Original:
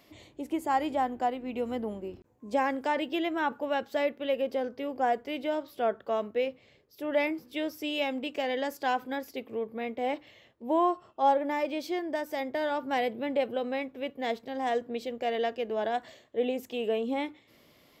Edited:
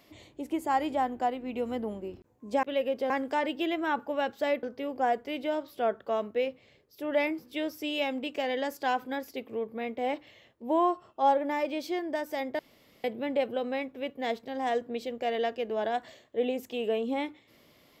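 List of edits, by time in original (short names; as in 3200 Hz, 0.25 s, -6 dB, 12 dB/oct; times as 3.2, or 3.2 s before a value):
4.16–4.63 move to 2.63
12.59–13.04 room tone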